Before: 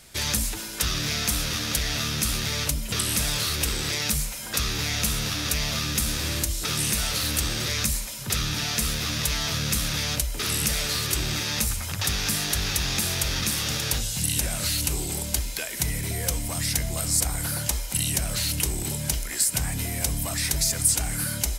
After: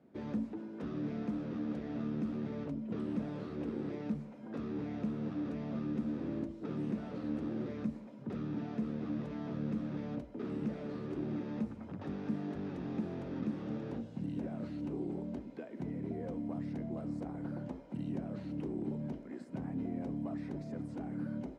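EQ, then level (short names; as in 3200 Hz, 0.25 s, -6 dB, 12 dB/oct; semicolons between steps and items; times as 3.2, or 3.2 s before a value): ladder band-pass 290 Hz, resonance 45%; +8.0 dB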